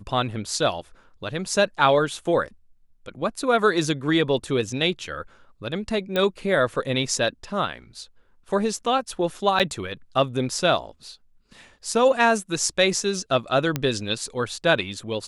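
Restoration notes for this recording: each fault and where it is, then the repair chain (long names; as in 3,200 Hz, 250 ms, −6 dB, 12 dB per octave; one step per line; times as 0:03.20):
0:06.16: click −11 dBFS
0:09.59–0:09.60: drop-out 7.4 ms
0:13.76: click −9 dBFS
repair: click removal
repair the gap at 0:09.59, 7.4 ms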